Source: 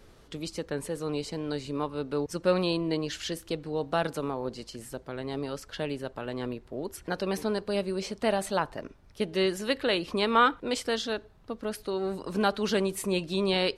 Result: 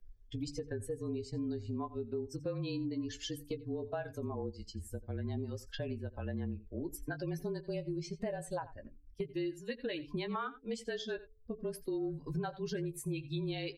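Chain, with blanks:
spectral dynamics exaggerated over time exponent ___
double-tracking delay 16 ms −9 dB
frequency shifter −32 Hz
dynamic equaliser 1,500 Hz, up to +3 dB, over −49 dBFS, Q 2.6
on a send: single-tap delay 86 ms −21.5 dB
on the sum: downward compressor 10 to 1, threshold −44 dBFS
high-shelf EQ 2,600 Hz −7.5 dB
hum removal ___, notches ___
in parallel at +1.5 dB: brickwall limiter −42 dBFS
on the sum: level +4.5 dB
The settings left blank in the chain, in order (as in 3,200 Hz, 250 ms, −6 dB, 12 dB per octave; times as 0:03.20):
2, 144.5 Hz, 3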